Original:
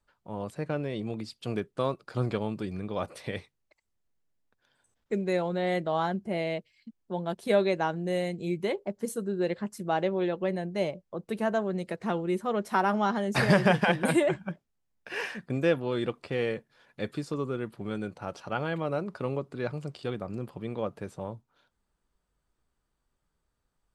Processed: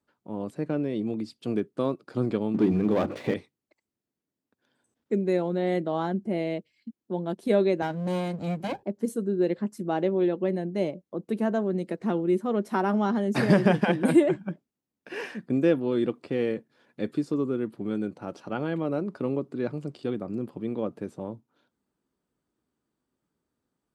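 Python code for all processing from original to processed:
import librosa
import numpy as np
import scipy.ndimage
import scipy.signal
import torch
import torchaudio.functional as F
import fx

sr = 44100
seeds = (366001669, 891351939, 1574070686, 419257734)

y = fx.chain(x, sr, fx.lowpass(hz=3000.0, slope=12),
    fx.hum_notches(base_hz=50, count=7),
    fx.leveller(passes=3), at=(2.54, 3.34))
y = fx.chain(y, sr, fx.lower_of_two(delay_ms=1.3),
    fx.band_squash(depth_pct=40), at=(7.82, 8.83))
y = scipy.signal.sosfilt(scipy.signal.butter(2, 90.0, 'highpass', fs=sr, output='sos'), y)
y = fx.peak_eq(y, sr, hz=280.0, db=12.5, octaves=1.4)
y = y * 10.0 ** (-4.0 / 20.0)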